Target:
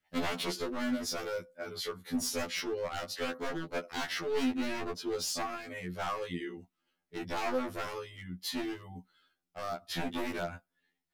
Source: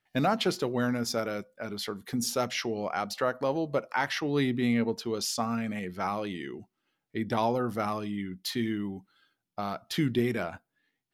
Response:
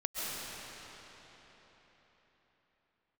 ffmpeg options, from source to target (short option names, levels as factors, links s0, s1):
-af "aeval=exprs='0.0562*(abs(mod(val(0)/0.0562+3,4)-2)-1)':c=same,adynamicequalizer=threshold=0.00282:dfrequency=840:dqfactor=5.2:tfrequency=840:tqfactor=5.2:attack=5:release=100:ratio=0.375:range=2.5:mode=cutabove:tftype=bell,afftfilt=real='re*2*eq(mod(b,4),0)':imag='im*2*eq(mod(b,4),0)':win_size=2048:overlap=0.75"